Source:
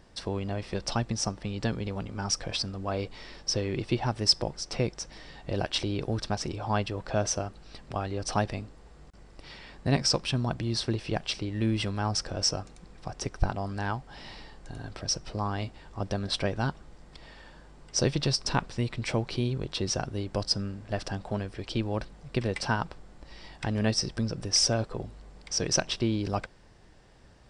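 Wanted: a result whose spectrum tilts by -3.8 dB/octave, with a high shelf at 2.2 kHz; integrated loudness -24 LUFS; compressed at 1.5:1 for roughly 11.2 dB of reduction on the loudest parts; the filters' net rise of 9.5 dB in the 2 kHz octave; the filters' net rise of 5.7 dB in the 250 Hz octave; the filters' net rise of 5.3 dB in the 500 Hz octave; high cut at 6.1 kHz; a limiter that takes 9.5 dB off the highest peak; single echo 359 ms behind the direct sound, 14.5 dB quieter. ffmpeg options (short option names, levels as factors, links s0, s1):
-af "lowpass=6100,equalizer=f=250:t=o:g=6,equalizer=f=500:t=o:g=4,equalizer=f=2000:t=o:g=7.5,highshelf=f=2200:g=9,acompressor=threshold=0.00794:ratio=1.5,alimiter=limit=0.075:level=0:latency=1,aecho=1:1:359:0.188,volume=3.55"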